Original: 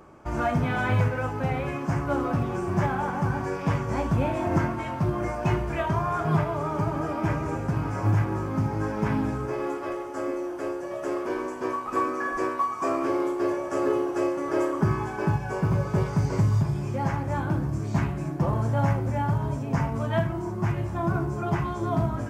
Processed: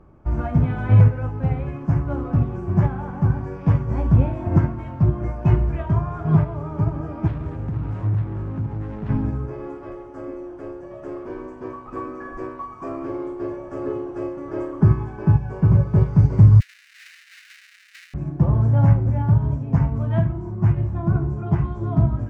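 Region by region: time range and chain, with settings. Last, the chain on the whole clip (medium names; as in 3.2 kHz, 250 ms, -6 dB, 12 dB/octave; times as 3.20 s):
7.27–9.09 s: self-modulated delay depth 0.4 ms + compression 4:1, threshold -26 dBFS
16.60–18.14 s: square wave that keeps the level + steep high-pass 1.7 kHz 48 dB/octave + band-stop 3.3 kHz, Q 11
whole clip: RIAA curve playback; upward expansion 1.5:1, over -21 dBFS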